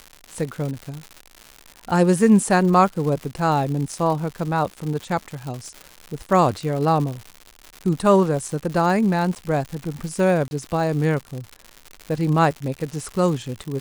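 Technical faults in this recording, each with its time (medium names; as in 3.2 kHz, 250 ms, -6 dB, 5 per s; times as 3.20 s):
crackle 190 per s -28 dBFS
9.35–9.36 s: dropout 8.7 ms
10.48–10.51 s: dropout 31 ms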